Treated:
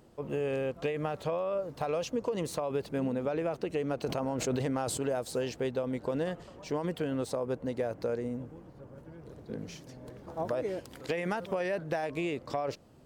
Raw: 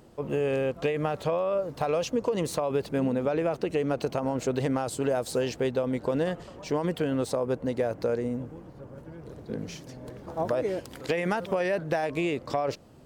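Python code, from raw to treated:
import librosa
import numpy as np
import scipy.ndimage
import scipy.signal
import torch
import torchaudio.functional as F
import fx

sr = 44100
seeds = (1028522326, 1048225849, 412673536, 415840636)

y = fx.sustainer(x, sr, db_per_s=23.0, at=(4.06, 5.03))
y = y * librosa.db_to_amplitude(-5.0)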